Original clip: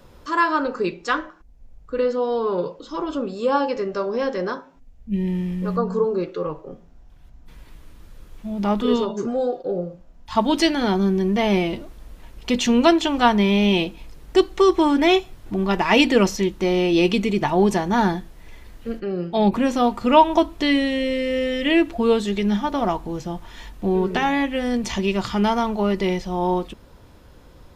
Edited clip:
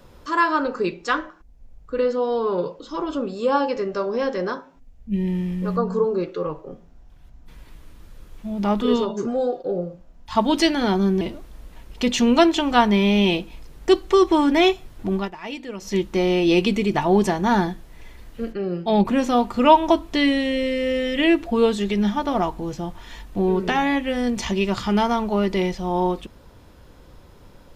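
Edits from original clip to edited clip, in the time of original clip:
0:11.21–0:11.68: remove
0:15.61–0:16.44: duck −17 dB, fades 0.17 s

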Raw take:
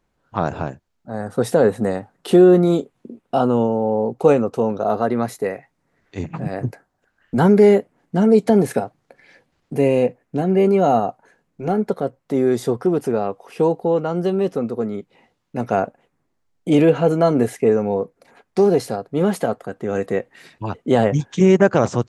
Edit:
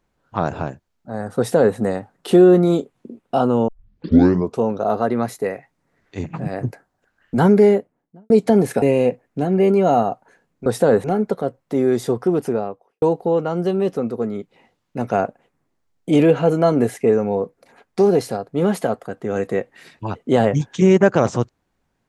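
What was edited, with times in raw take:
0:01.38–0:01.76: duplicate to 0:11.63
0:03.68: tape start 0.91 s
0:07.47–0:08.30: fade out and dull
0:08.82–0:09.79: remove
0:13.02–0:13.61: fade out and dull

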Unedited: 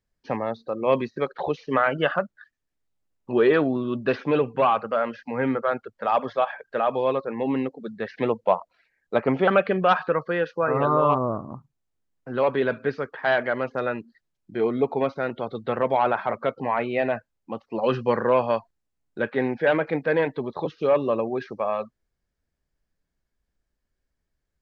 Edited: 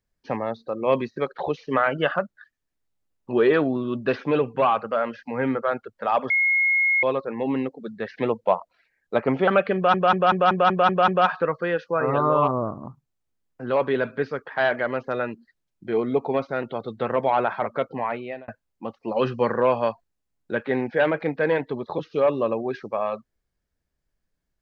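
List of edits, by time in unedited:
0:06.30–0:07.03: beep over 2,160 Hz −17 dBFS
0:09.75: stutter 0.19 s, 8 plays
0:16.39–0:17.15: fade out equal-power

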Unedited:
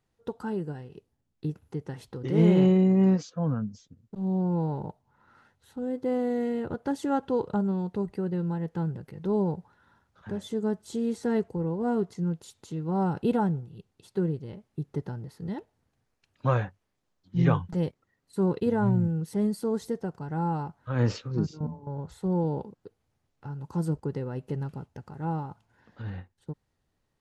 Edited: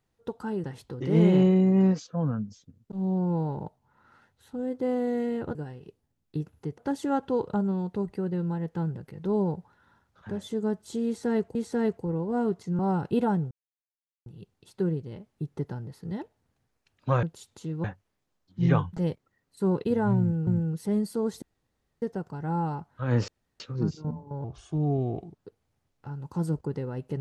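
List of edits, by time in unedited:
0:00.64–0:01.87: move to 0:06.78
0:11.06–0:11.55: repeat, 2 plays
0:12.30–0:12.91: move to 0:16.60
0:13.63: splice in silence 0.75 s
0:18.95–0:19.23: repeat, 2 plays
0:19.90: splice in room tone 0.60 s
0:21.16: splice in room tone 0.32 s
0:22.00–0:22.78: play speed 82%

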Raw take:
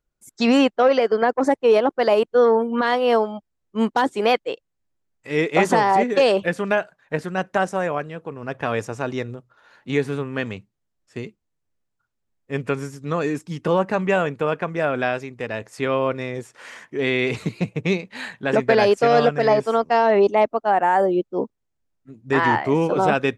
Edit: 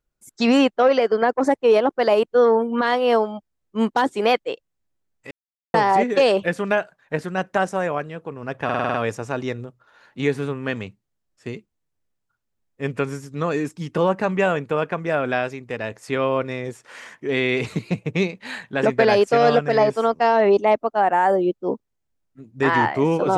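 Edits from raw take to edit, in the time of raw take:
0:05.31–0:05.74: silence
0:08.64: stutter 0.05 s, 7 plays

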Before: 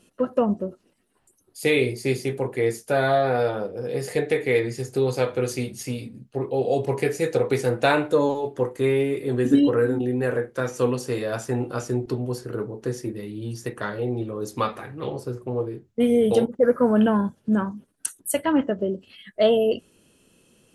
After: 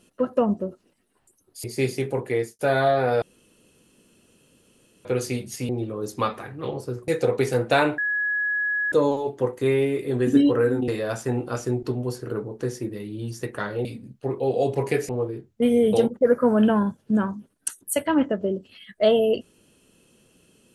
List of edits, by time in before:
0:01.64–0:01.91: remove
0:02.50–0:02.86: fade out equal-power
0:03.49–0:05.32: fill with room tone
0:05.96–0:07.20: swap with 0:14.08–0:15.47
0:08.10: insert tone 1,680 Hz −21.5 dBFS 0.94 s
0:10.06–0:11.11: remove

